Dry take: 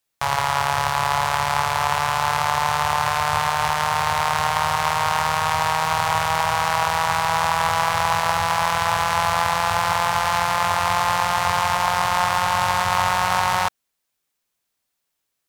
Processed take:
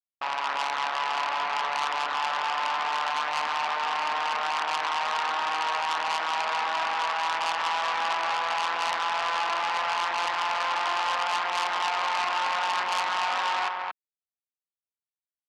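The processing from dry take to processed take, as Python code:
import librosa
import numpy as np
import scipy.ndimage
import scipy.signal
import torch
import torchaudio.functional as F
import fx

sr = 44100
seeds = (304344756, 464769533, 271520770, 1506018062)

p1 = fx.cvsd(x, sr, bps=64000)
p2 = fx.cheby_harmonics(p1, sr, harmonics=(3, 4), levels_db=(-27, -32), full_scale_db=-7.5)
p3 = fx.brickwall_highpass(p2, sr, low_hz=200.0)
p4 = fx.quant_companded(p3, sr, bits=4)
p5 = scipy.signal.sosfilt(scipy.signal.butter(6, 3200.0, 'lowpass', fs=sr, output='sos'), p4)
p6 = fx.low_shelf(p5, sr, hz=430.0, db=-10.5)
p7 = p6 + fx.echo_single(p6, sr, ms=227, db=-5.5, dry=0)
y = fx.transformer_sat(p7, sr, knee_hz=3700.0)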